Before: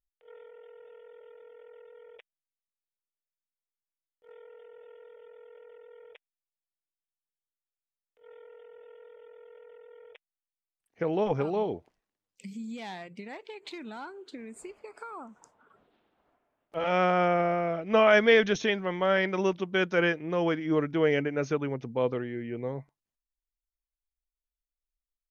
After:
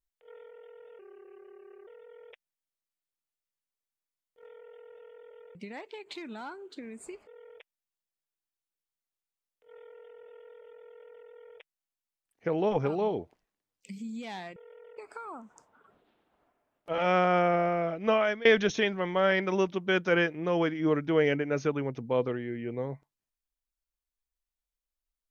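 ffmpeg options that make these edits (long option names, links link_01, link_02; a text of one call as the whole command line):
ffmpeg -i in.wav -filter_complex "[0:a]asplit=8[link_01][link_02][link_03][link_04][link_05][link_06][link_07][link_08];[link_01]atrim=end=0.994[link_09];[link_02]atrim=start=0.99:end=1.73,asetpts=PTS-STARTPTS,asetrate=37044,aresample=44100[link_10];[link_03]atrim=start=1.726:end=5.412[link_11];[link_04]atrim=start=13.108:end=14.832[link_12];[link_05]atrim=start=5.818:end=13.112[link_13];[link_06]atrim=start=5.408:end=5.822[link_14];[link_07]atrim=start=14.828:end=18.31,asetpts=PTS-STARTPTS,afade=type=out:start_time=2.992:duration=0.49:silence=0.0668344[link_15];[link_08]atrim=start=18.31,asetpts=PTS-STARTPTS,afade=type=in:duration=0.004:curve=hsin:silence=0.0668344[link_16];[link_09][link_10]acrossfade=duration=0.004:curve1=hsin:curve2=hsin[link_17];[link_17][link_11]acrossfade=duration=0.004:curve1=hsin:curve2=hsin[link_18];[link_18][link_12]acrossfade=duration=0.004:curve1=hsin:curve2=hsin[link_19];[link_19][link_13]acrossfade=duration=0.004:curve1=hsin:curve2=hsin[link_20];[link_20][link_14]acrossfade=duration=0.004:curve1=hsin:curve2=hsin[link_21];[link_15][link_16]concat=n=2:v=0:a=1[link_22];[link_21][link_22]acrossfade=duration=0.004:curve1=hsin:curve2=hsin" out.wav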